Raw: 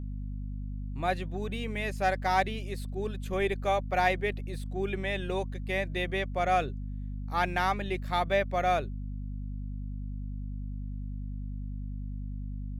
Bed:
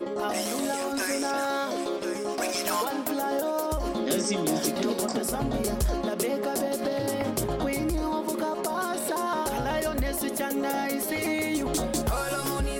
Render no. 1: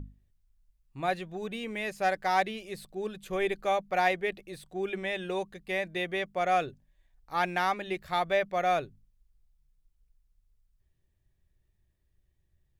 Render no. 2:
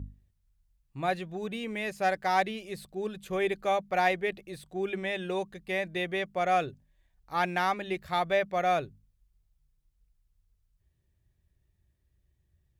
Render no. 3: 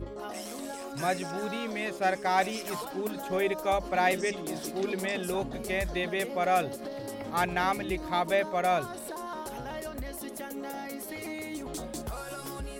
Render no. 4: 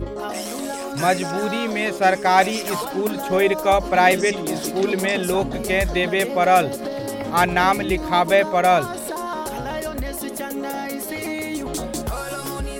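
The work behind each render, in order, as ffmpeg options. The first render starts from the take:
-af "bandreject=f=50:t=h:w=6,bandreject=f=100:t=h:w=6,bandreject=f=150:t=h:w=6,bandreject=f=200:t=h:w=6,bandreject=f=250:t=h:w=6"
-af "highpass=45,lowshelf=f=160:g=5.5"
-filter_complex "[1:a]volume=-10dB[a];[0:a][a]amix=inputs=2:normalize=0"
-af "volume=10.5dB"

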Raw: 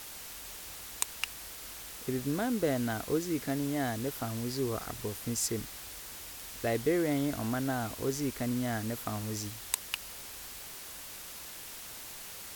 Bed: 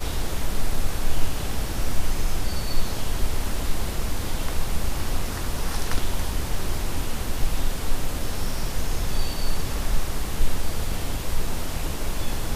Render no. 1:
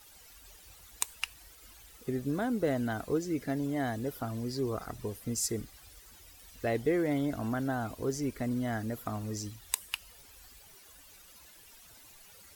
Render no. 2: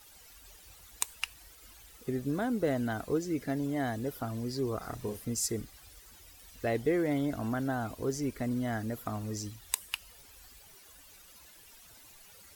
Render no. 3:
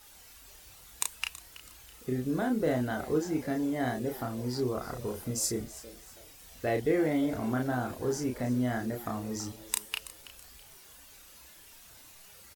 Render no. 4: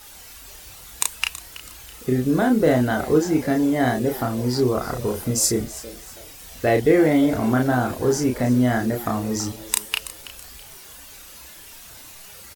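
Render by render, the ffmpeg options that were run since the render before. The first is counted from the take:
-af "afftdn=nr=14:nf=-45"
-filter_complex "[0:a]asettb=1/sr,asplit=3[a][b][c];[a]atrim=end=4.804[d];[b]atrim=start=4.8:end=5.25,asetpts=PTS-STARTPTS,afade=t=in:d=0.004:c=qsin,afade=t=out:st=0.446:d=0.004:c=qsin,asplit=2[e][f];[f]adelay=34,volume=-4dB[g];[e][g]amix=inputs=2:normalize=0,atrim=end_sample=19845[h];[c]atrim=start=5.246[i];[d][h]acrossfade=d=0.004:c1=hsin:c2=qsin[j];[j][i]acrossfade=d=0.004:c1=qsin:c2=hsin"
-filter_complex "[0:a]asplit=2[a][b];[b]adelay=32,volume=-3.5dB[c];[a][c]amix=inputs=2:normalize=0,asplit=4[d][e][f][g];[e]adelay=327,afreqshift=110,volume=-16.5dB[h];[f]adelay=654,afreqshift=220,volume=-25.6dB[i];[g]adelay=981,afreqshift=330,volume=-34.7dB[j];[d][h][i][j]amix=inputs=4:normalize=0"
-af "volume=11dB,alimiter=limit=-2dB:level=0:latency=1"

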